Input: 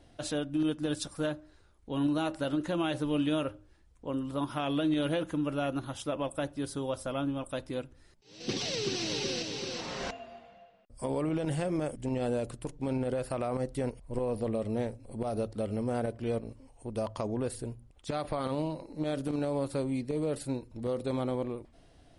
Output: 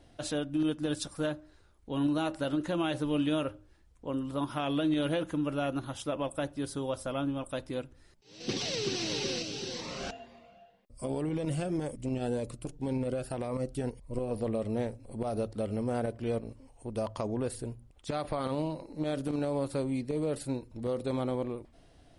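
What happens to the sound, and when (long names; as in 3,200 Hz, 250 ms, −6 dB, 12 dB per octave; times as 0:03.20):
0:09.38–0:14.31: phaser whose notches keep moving one way rising 1.9 Hz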